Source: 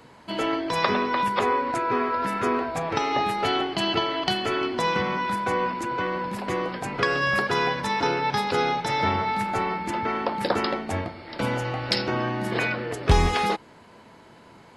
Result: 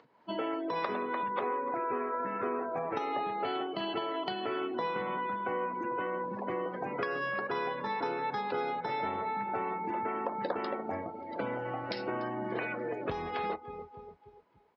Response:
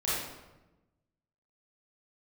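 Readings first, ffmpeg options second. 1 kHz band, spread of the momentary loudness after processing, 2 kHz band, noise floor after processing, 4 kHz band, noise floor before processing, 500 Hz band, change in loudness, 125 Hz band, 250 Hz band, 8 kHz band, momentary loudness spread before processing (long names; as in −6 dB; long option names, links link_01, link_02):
−8.5 dB, 3 LU, −11.5 dB, −59 dBFS, −15.5 dB, −50 dBFS, −7.0 dB, −9.5 dB, −17.0 dB, −9.5 dB, below −30 dB, 6 LU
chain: -af "lowpass=frequency=6600:width=0.5412,lowpass=frequency=6600:width=1.3066,aecho=1:1:292|584|876|1168|1460|1752:0.15|0.0883|0.0521|0.0307|0.0181|0.0107,afftdn=noise_reduction=22:noise_floor=-33,acompressor=threshold=-33dB:ratio=3,aemphasis=mode=reproduction:type=riaa,acompressor=mode=upward:threshold=-47dB:ratio=2.5,highpass=410"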